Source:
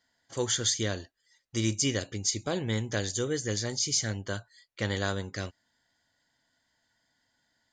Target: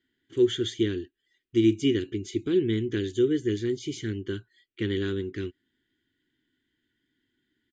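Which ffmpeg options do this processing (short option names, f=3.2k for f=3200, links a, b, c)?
-af "firequalizer=gain_entry='entry(180,0);entry(370,15);entry(580,-25);entry(1500,-5);entry(3200,2);entry(4700,-18);entry(9300,-15)':delay=0.05:min_phase=1"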